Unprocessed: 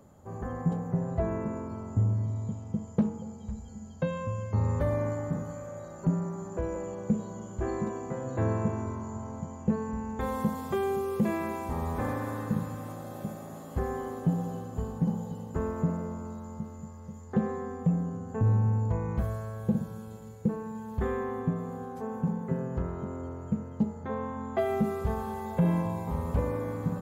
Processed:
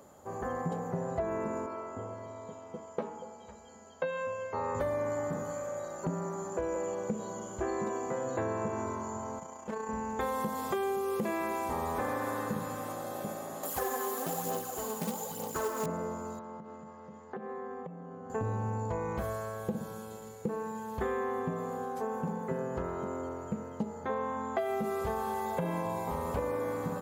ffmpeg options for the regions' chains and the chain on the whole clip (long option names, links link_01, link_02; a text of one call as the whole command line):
ffmpeg -i in.wav -filter_complex "[0:a]asettb=1/sr,asplit=3[link_01][link_02][link_03];[link_01]atrim=end=1.664[link_04];[link_02]atrim=start=1.66:end=4.75,asetpts=PTS-STARTPTS,afade=type=in:duration=0.004:curve=qsin,afade=type=out:start_time=3.086:duration=0.004:curve=qsin,bass=frequency=250:gain=-15,treble=frequency=4000:gain=-10,asplit=2[link_05][link_06];[link_06]adelay=12,volume=-6dB[link_07];[link_05][link_07]amix=inputs=2:normalize=0,atrim=end_sample=136269[link_08];[link_03]atrim=start=4.746[link_09];[link_04][link_08]acrossfade=duration=0.004:curve1=hsin:curve2=qsin[link_10];[link_10][link_09]acrossfade=duration=0.004:curve1=qsin:curve2=hsin,asettb=1/sr,asplit=3[link_11][link_12][link_13];[link_11]atrim=end=9.394[link_14];[link_12]atrim=start=9.39:end=9.89,asetpts=PTS-STARTPTS,afade=type=in:duration=0.004:curve=qsin,afade=type=out:start_time=0.496:duration=0.004:curve=qsin,lowshelf=frequency=280:gain=-12,volume=28.5dB,asoftclip=hard,volume=-28.5dB,tremolo=f=29:d=0.519[link_15];[link_13]atrim=start=9.886[link_16];[link_14][link_15]acrossfade=duration=0.004:curve1=hsin:curve2=qsin[link_17];[link_17][link_16]acrossfade=duration=0.004:curve1=qsin:curve2=hsin,asettb=1/sr,asplit=3[link_18][link_19][link_20];[link_18]atrim=end=13.634[link_21];[link_19]atrim=start=13.63:end=15.86,asetpts=PTS-STARTPTS,afade=type=in:duration=0.004:curve=qsin,afade=type=out:start_time=2.226:duration=0.004:curve=qsin,aemphasis=mode=production:type=bsi,aphaser=in_gain=1:out_gain=1:delay=4.9:decay=0.55:speed=1.1:type=sinusoidal,acrusher=bits=4:mode=log:mix=0:aa=0.000001[link_22];[link_20]atrim=start=15.856[link_23];[link_21][link_22]acrossfade=duration=0.004:curve1=hsin:curve2=qsin[link_24];[link_24][link_23]acrossfade=duration=0.004:curve1=qsin:curve2=hsin,asettb=1/sr,asplit=3[link_25][link_26][link_27];[link_25]atrim=end=16.394[link_28];[link_26]atrim=start=16.39:end=18.3,asetpts=PTS-STARTPTS,afade=type=in:duration=0.004:curve=qsin,afade=type=out:start_time=1.906:duration=0.004:curve=qsin,highpass=140,lowpass=2800,acompressor=threshold=-40dB:ratio=4:attack=3.2:release=140:knee=1:detection=peak[link_29];[link_27]atrim=start=18.296[link_30];[link_28][link_29]acrossfade=duration=0.004:curve1=hsin:curve2=qsin[link_31];[link_31][link_30]acrossfade=duration=0.004:curve1=qsin:curve2=hsin,bass=frequency=250:gain=-14,treble=frequency=4000:gain=2,acompressor=threshold=-34dB:ratio=6,volume=5dB" out.wav